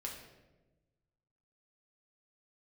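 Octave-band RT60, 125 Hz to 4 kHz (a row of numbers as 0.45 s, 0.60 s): 1.8 s, 1.5 s, 1.3 s, 0.95 s, 0.85 s, 0.70 s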